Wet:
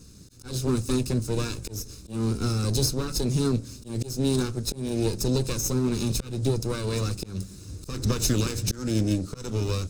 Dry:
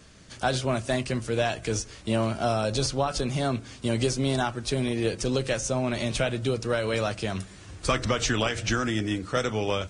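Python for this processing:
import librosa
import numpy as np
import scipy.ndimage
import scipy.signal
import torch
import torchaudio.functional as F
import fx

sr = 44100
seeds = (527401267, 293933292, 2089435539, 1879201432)

y = fx.lower_of_two(x, sr, delay_ms=0.78)
y = fx.auto_swell(y, sr, attack_ms=227.0)
y = fx.band_shelf(y, sr, hz=1500.0, db=-14.5, octaves=2.6)
y = F.gain(torch.from_numpy(y), 5.5).numpy()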